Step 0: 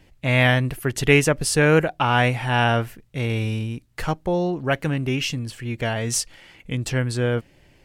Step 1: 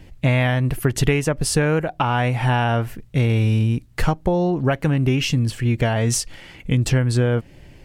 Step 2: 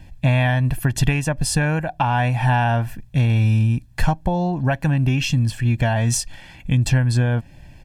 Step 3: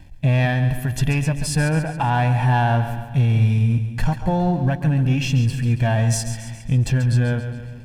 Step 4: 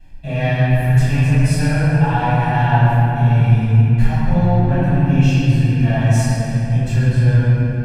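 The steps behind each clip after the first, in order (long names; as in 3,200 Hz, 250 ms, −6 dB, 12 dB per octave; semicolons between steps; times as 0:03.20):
dynamic equaliser 870 Hz, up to +4 dB, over −32 dBFS, Q 1; downward compressor 6 to 1, threshold −24 dBFS, peak gain reduction 14 dB; low-shelf EQ 300 Hz +7.5 dB; level +5 dB
comb filter 1.2 ms, depth 67%; level −2 dB
harmonic and percussive parts rebalanced percussive −7 dB; leveller curve on the samples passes 1; echo with a time of its own for lows and highs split 320 Hz, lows 202 ms, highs 138 ms, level −10 dB; level −2 dB
convolution reverb RT60 3.0 s, pre-delay 3 ms, DRR −17.5 dB; level −16 dB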